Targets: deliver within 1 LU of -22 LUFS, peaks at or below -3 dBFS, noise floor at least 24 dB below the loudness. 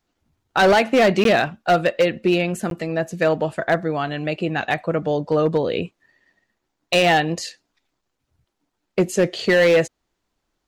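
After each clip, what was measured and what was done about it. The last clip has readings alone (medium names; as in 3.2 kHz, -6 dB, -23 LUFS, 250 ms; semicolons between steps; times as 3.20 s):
clipped samples 1.2%; clipping level -10.5 dBFS; dropouts 2; longest dropout 12 ms; loudness -20.0 LUFS; peak level -10.5 dBFS; loudness target -22.0 LUFS
-> clip repair -10.5 dBFS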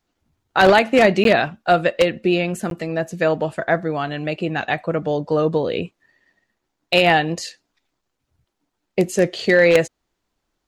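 clipped samples 0.0%; dropouts 2; longest dropout 12 ms
-> interpolate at 1.24/2.70 s, 12 ms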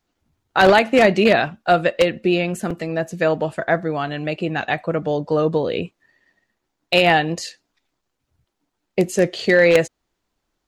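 dropouts 0; loudness -18.5 LUFS; peak level -1.5 dBFS; loudness target -22.0 LUFS
-> trim -3.5 dB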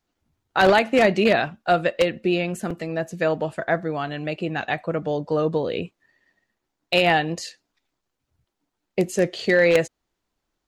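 loudness -22.0 LUFS; peak level -5.0 dBFS; noise floor -80 dBFS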